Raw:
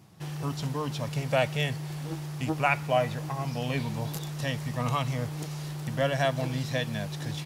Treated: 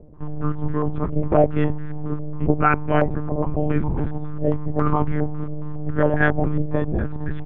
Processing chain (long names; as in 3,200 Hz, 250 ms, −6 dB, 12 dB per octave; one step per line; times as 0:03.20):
high-pass filter 89 Hz 24 dB per octave
one-pitch LPC vocoder at 8 kHz 150 Hz
low shelf with overshoot 500 Hz +8.5 dB, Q 1.5
low-pass on a step sequencer 7.3 Hz 600–1,600 Hz
level +2 dB